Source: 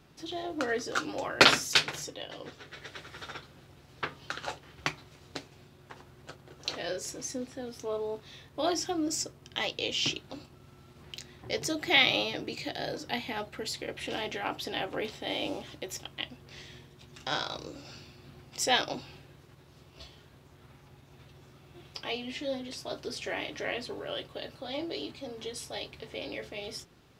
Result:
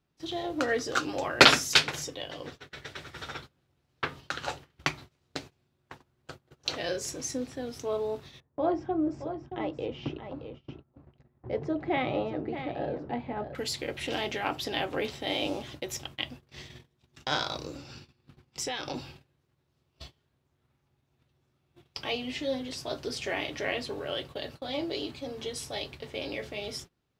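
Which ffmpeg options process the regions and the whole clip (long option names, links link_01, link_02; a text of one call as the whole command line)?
ffmpeg -i in.wav -filter_complex "[0:a]asettb=1/sr,asplit=3[link_01][link_02][link_03];[link_01]atrim=end=8.404[link_04];[link_02]atrim=start=8.4:end=13.55,asetpts=PTS-STARTPTS,afade=type=in:duration=0.004:curve=qsin,afade=type=out:start_time=5.146:duration=0.004:curve=qsin,lowpass=1000,aecho=1:1:624:0.335,atrim=end_sample=227115[link_05];[link_03]atrim=start=13.546[link_06];[link_04][link_05]acrossfade=duration=0.004:curve1=hsin:curve2=qsin[link_07];[link_07][link_06]acrossfade=duration=0.004:curve1=qsin:curve2=hsin,asettb=1/sr,asplit=3[link_08][link_09][link_10];[link_08]atrim=end=17.774[link_11];[link_09]atrim=start=17.77:end=18.96,asetpts=PTS-STARTPTS,afade=type=in:duration=0.004:curve=qsin,afade=type=out:start_time=1.186:duration=0.004:curve=qsin,highshelf=frequency=10000:gain=-8,bandreject=frequency=650:width=5,acompressor=threshold=-32dB:ratio=12:attack=3.2:release=140:knee=1:detection=peak[link_12];[link_10]atrim=start=18.956[link_13];[link_11][link_12]acrossfade=duration=0.004:curve1=hsin:curve2=qsin[link_14];[link_14][link_13]acrossfade=duration=0.004:curve1=qsin:curve2=hsin,lowshelf=frequency=140:gain=3.5,agate=range=-22dB:threshold=-47dB:ratio=16:detection=peak,volume=2.5dB" out.wav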